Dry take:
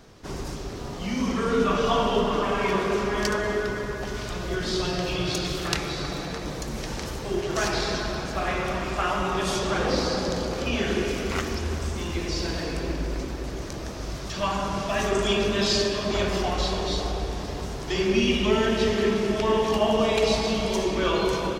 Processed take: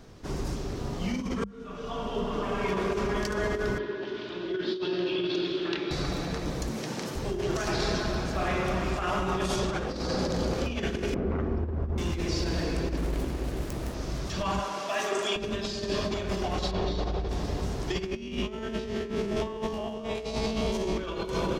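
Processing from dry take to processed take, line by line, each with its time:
1.44–3.28 fade in
3.78–5.91 speaker cabinet 320–3900 Hz, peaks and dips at 350 Hz +9 dB, 500 Hz -6 dB, 740 Hz -10 dB, 1200 Hz -7 dB, 2100 Hz -5 dB, 3400 Hz +3 dB
6.69–7.16 HPF 140 Hz 24 dB/oct
11.14–11.98 LPF 1000 Hz
12.97–13.94 self-modulated delay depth 0.58 ms
14.59–15.36 Bessel high-pass 550 Hz
16.71–17.29 Gaussian blur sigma 1.6 samples
18.06–20.97 stepped spectrum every 50 ms
whole clip: low shelf 350 Hz +6.5 dB; notches 50/100/150/200 Hz; negative-ratio compressor -24 dBFS, ratio -0.5; gain -4.5 dB

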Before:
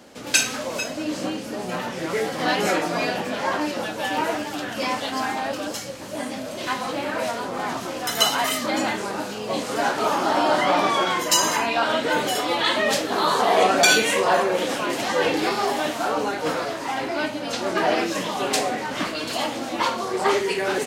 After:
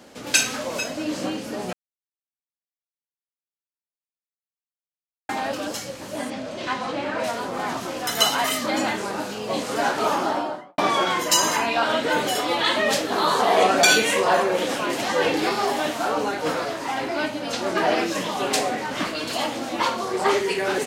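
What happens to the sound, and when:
1.73–5.29 mute
6.3–7.24 air absorption 76 m
10.1–10.78 studio fade out

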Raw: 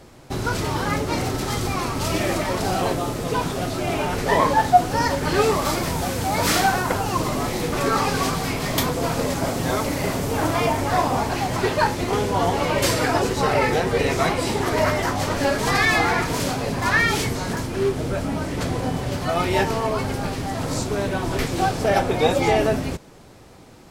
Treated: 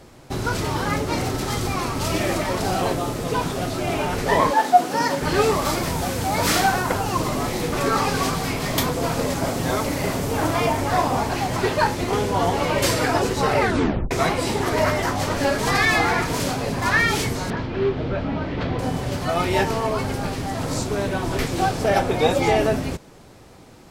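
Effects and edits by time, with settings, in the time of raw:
4.5–5.2 HPF 280 Hz -> 130 Hz 24 dB/oct
13.6 tape stop 0.51 s
17.5–18.79 LPF 3900 Hz 24 dB/oct

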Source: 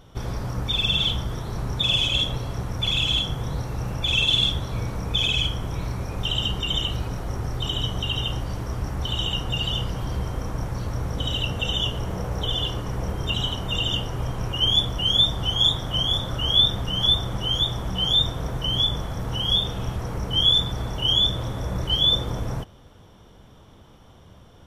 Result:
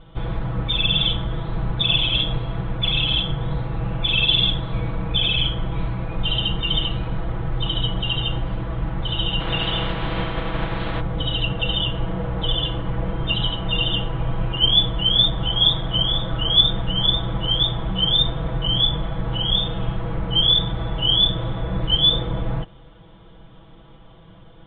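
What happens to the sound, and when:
9.39–10.99 spectral contrast lowered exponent 0.57
whole clip: steep low-pass 3800 Hz 72 dB/oct; low shelf 62 Hz +6 dB; comb 6.1 ms, depth 89%

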